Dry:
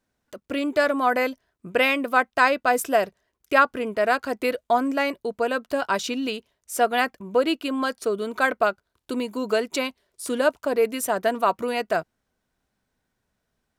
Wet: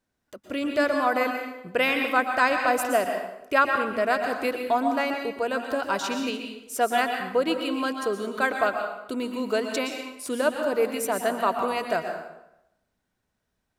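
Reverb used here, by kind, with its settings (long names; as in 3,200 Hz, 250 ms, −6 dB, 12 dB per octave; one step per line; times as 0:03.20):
dense smooth reverb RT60 0.86 s, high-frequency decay 0.8×, pre-delay 105 ms, DRR 4 dB
level −3 dB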